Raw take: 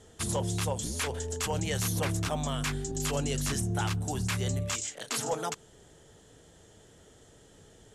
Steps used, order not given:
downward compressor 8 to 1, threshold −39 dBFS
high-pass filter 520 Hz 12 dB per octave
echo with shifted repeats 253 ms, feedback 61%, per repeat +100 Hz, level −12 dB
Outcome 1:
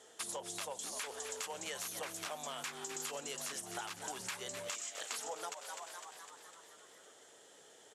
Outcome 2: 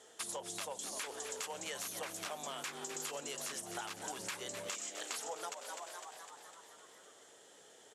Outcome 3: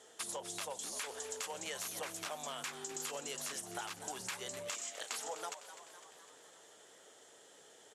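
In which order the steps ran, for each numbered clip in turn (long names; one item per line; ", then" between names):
high-pass filter, then echo with shifted repeats, then downward compressor
echo with shifted repeats, then high-pass filter, then downward compressor
high-pass filter, then downward compressor, then echo with shifted repeats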